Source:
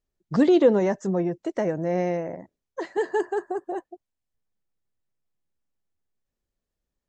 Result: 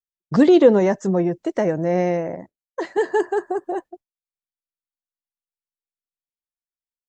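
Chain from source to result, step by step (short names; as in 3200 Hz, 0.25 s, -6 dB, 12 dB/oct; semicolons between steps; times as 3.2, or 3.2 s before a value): expander -39 dBFS; gain +5 dB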